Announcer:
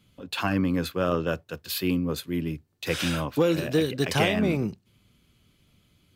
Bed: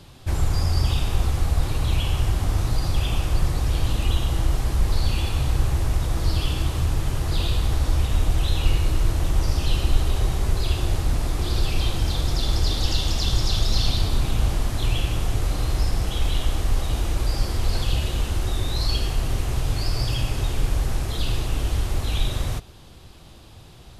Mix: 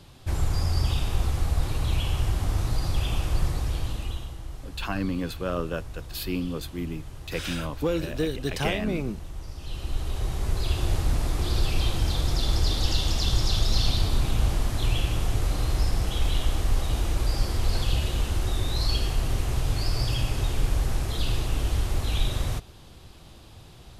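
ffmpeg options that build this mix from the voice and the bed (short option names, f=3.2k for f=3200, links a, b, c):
-filter_complex "[0:a]adelay=4450,volume=-4dB[a];[1:a]volume=11dB,afade=t=out:st=3.44:d=0.93:silence=0.223872,afade=t=in:st=9.57:d=1.36:silence=0.188365[b];[a][b]amix=inputs=2:normalize=0"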